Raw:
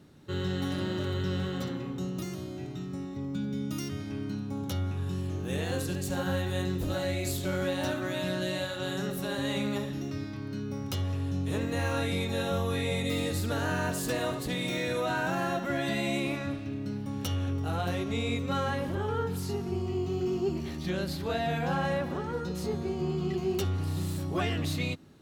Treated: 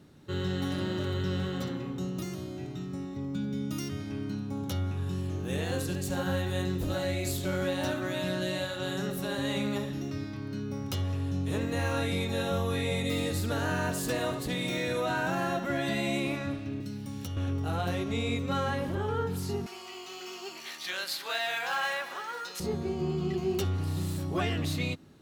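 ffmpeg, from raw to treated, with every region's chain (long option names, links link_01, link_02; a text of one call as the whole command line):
ffmpeg -i in.wav -filter_complex "[0:a]asettb=1/sr,asplit=3[link_01][link_02][link_03];[link_01]atrim=end=16.804[link_04];[link_02]atrim=start=16.8:end=17.37,asetpts=PTS-STARTPTS,afade=type=in:duration=0.004:curve=qsin,afade=type=out:start_time=0.566:duration=0.004:curve=qsin,highshelf=frequency=4100:gain=8.5,acrossover=split=290|1800|8000[link_05][link_06][link_07][link_08];[link_05]acompressor=threshold=-36dB:ratio=3[link_09];[link_06]acompressor=threshold=-50dB:ratio=3[link_10];[link_07]acompressor=threshold=-52dB:ratio=3[link_11];[link_08]acompressor=threshold=-55dB:ratio=3[link_12];[link_09][link_10][link_11][link_12]amix=inputs=4:normalize=0[link_13];[link_03]atrim=start=17.366[link_14];[link_04][link_13]acrossfade=duration=0.004:curve1=hsin:curve2=qsin[link_15];[link_15][link_14]acrossfade=duration=0.004:curve1=qsin:curve2=hsin,asettb=1/sr,asplit=3[link_16][link_17][link_18];[link_16]atrim=end=19.664[link_19];[link_17]atrim=start=19.66:end=22.6,asetpts=PTS-STARTPTS,afade=type=in:duration=0.004:curve=qsin,afade=type=out:start_time=2.936:duration=0.004:curve=qsin,highpass=1300,acontrast=82,acrusher=bits=6:mode=log:mix=0:aa=0.000001[link_20];[link_18]atrim=start=22.596[link_21];[link_19][link_20]acrossfade=duration=0.004:curve1=hsin:curve2=qsin[link_22];[link_22][link_21]acrossfade=duration=0.004:curve1=qsin:curve2=hsin" out.wav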